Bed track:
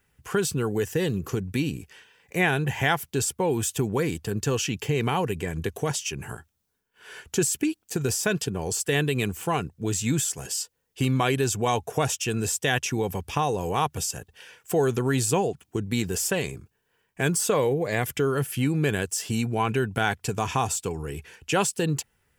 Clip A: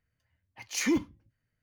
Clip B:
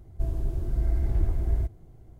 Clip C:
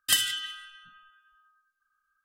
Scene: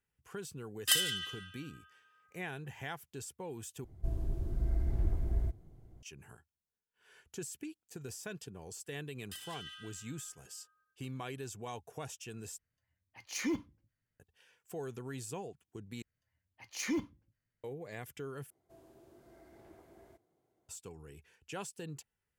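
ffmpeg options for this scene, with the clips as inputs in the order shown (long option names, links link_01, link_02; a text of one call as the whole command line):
ffmpeg -i bed.wav -i cue0.wav -i cue1.wav -i cue2.wav -filter_complex "[3:a]asplit=2[link_01][link_02];[2:a]asplit=2[link_03][link_04];[1:a]asplit=2[link_05][link_06];[0:a]volume=-19dB[link_07];[link_01]highpass=350[link_08];[link_03]equalizer=frequency=210:width=1.3:gain=3[link_09];[link_02]acompressor=threshold=-30dB:ratio=12:attack=0.19:release=434:knee=6:detection=peak[link_10];[link_04]highpass=380[link_11];[link_07]asplit=5[link_12][link_13][link_14][link_15][link_16];[link_12]atrim=end=3.844[link_17];[link_09]atrim=end=2.19,asetpts=PTS-STARTPTS,volume=-7dB[link_18];[link_13]atrim=start=6.026:end=12.584[link_19];[link_05]atrim=end=1.62,asetpts=PTS-STARTPTS,volume=-7.5dB[link_20];[link_14]atrim=start=14.196:end=16.024[link_21];[link_06]atrim=end=1.62,asetpts=PTS-STARTPTS,volume=-7.5dB[link_22];[link_15]atrim=start=17.636:end=18.504[link_23];[link_11]atrim=end=2.19,asetpts=PTS-STARTPTS,volume=-13.5dB[link_24];[link_16]atrim=start=20.686[link_25];[link_08]atrim=end=2.24,asetpts=PTS-STARTPTS,volume=-4.5dB,afade=type=in:duration=0.004:curve=hsin,afade=type=out:start_time=2.236:duration=0.004:curve=hsin,adelay=790[link_26];[link_10]atrim=end=2.24,asetpts=PTS-STARTPTS,volume=-8dB,afade=type=in:duration=0.004:curve=hsin,afade=type=out:start_time=2.236:duration=0.004:curve=hsin,adelay=9230[link_27];[link_17][link_18]acrossfade=duration=0.004:curve1=hsin:curve2=hsin[link_28];[link_28][link_19]acrossfade=duration=0.004:curve1=hsin:curve2=hsin[link_29];[link_29][link_20]acrossfade=duration=0.004:curve1=hsin:curve2=hsin[link_30];[link_30][link_21]acrossfade=duration=0.004:curve1=hsin:curve2=hsin[link_31];[link_31][link_22]acrossfade=duration=0.004:curve1=hsin:curve2=hsin[link_32];[link_32][link_23]acrossfade=duration=0.004:curve1=hsin:curve2=hsin[link_33];[link_33][link_24]acrossfade=duration=0.004:curve1=hsin:curve2=hsin[link_34];[link_34][link_25]acrossfade=duration=0.004:curve1=hsin:curve2=hsin[link_35];[link_35][link_26][link_27]amix=inputs=3:normalize=0" out.wav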